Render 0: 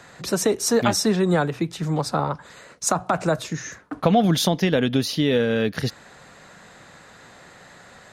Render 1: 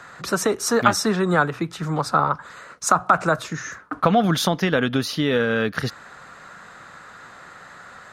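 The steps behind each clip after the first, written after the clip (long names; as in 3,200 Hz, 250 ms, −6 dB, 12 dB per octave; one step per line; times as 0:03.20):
parametric band 1,300 Hz +12 dB 0.82 octaves
level −1.5 dB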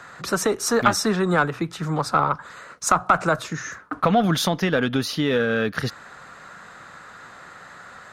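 one-sided soft clipper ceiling −3.5 dBFS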